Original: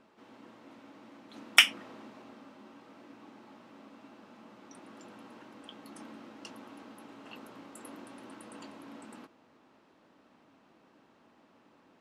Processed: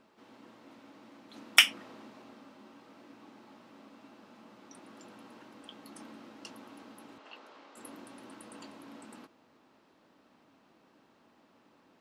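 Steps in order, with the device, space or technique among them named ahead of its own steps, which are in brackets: 7.18–7.77 s: three-band isolator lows -19 dB, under 360 Hz, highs -22 dB, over 6.6 kHz; presence and air boost (peaking EQ 4.5 kHz +2.5 dB; treble shelf 9.8 kHz +6 dB); trim -1.5 dB

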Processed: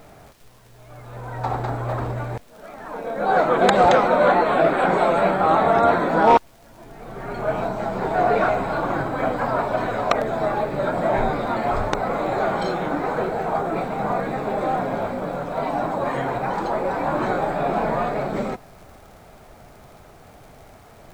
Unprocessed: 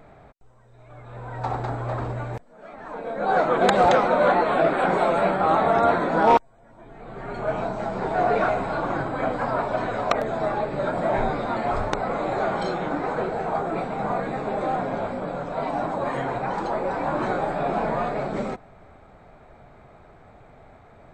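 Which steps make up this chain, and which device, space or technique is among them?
vinyl LP (crackle; pink noise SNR 33 dB); trim +2.5 dB

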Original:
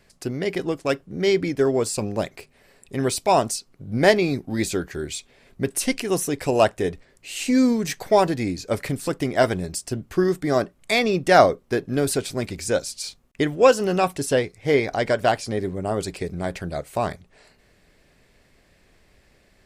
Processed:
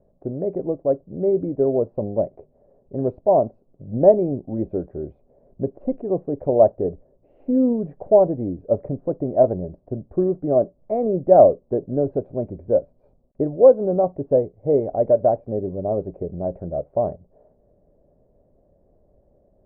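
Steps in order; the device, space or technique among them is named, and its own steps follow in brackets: under water (low-pass 700 Hz 24 dB/octave; peaking EQ 590 Hz +9 dB 0.46 oct); trim -1 dB

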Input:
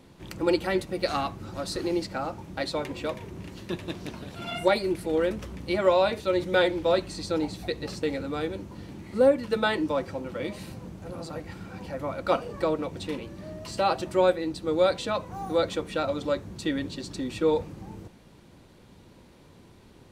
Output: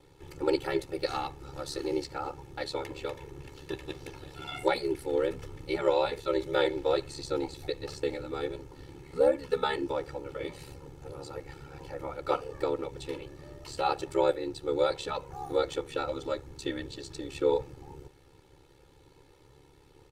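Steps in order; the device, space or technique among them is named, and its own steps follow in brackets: ring-modulated robot voice (ring modulator 35 Hz; comb 2.3 ms, depth 88%); trim -4 dB

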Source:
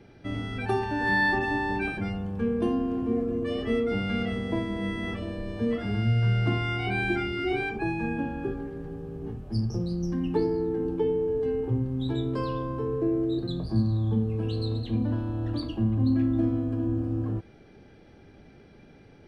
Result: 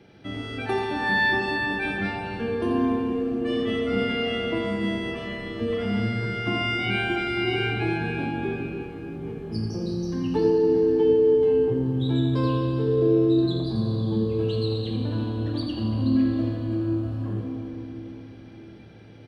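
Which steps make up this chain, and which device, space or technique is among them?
PA in a hall (high-pass 110 Hz 6 dB/octave; peaking EQ 3.3 kHz +5 dB 0.73 oct; delay 84 ms -9 dB; reverberation RT60 4.1 s, pre-delay 3 ms, DRR 1.5 dB)

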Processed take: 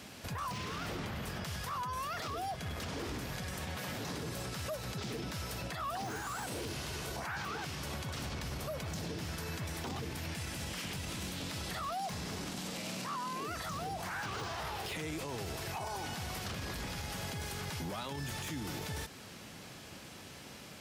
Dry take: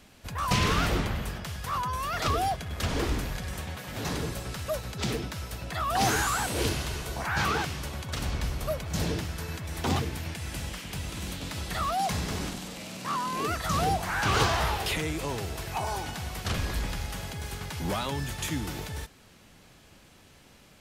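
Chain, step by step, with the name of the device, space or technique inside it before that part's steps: broadcast voice chain (high-pass 91 Hz 12 dB/octave; de-esser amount 70%; compression 3:1, threshold -40 dBFS, peak gain reduction 13.5 dB; peaking EQ 5.2 kHz +2.5 dB 0.37 oct; peak limiter -37 dBFS, peak gain reduction 10.5 dB); trim +6 dB

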